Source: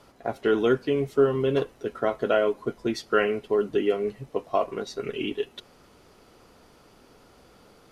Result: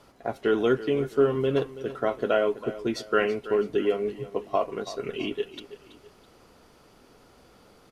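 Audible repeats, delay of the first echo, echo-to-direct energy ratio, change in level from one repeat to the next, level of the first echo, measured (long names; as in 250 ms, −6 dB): 2, 329 ms, −14.5 dB, −8.0 dB, −15.0 dB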